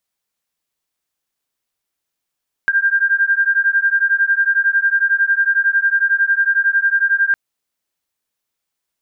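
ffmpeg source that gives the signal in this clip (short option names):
-f lavfi -i "aevalsrc='0.168*(sin(2*PI*1590*t)+sin(2*PI*1601*t))':d=4.66:s=44100"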